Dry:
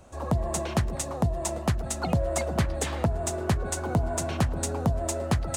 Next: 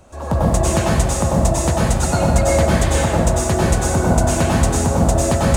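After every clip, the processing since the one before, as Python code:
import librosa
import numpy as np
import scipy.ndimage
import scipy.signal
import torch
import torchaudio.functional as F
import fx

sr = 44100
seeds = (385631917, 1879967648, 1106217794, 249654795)

y = fx.rev_plate(x, sr, seeds[0], rt60_s=1.4, hf_ratio=0.75, predelay_ms=85, drr_db=-6.5)
y = F.gain(torch.from_numpy(y), 4.5).numpy()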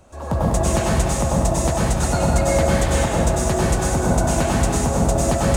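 y = x + 10.0 ** (-7.0 / 20.0) * np.pad(x, (int(200 * sr / 1000.0), 0))[:len(x)]
y = F.gain(torch.from_numpy(y), -3.0).numpy()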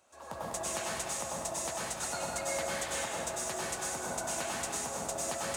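y = fx.highpass(x, sr, hz=1400.0, slope=6)
y = F.gain(torch.from_numpy(y), -8.5).numpy()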